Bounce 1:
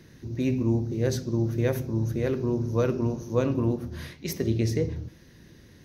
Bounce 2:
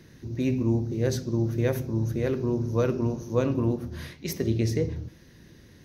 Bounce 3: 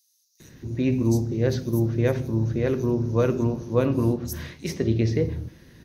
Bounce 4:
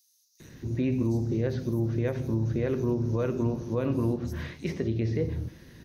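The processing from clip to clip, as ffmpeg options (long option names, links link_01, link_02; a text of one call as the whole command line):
ffmpeg -i in.wav -af anull out.wav
ffmpeg -i in.wav -filter_complex "[0:a]acrossover=split=5500[link_01][link_02];[link_01]adelay=400[link_03];[link_03][link_02]amix=inputs=2:normalize=0,volume=3dB" out.wav
ffmpeg -i in.wav -filter_complex "[0:a]alimiter=limit=-18dB:level=0:latency=1:release=210,acrossover=split=3300[link_01][link_02];[link_02]acompressor=threshold=-54dB:ratio=4:attack=1:release=60[link_03];[link_01][link_03]amix=inputs=2:normalize=0" out.wav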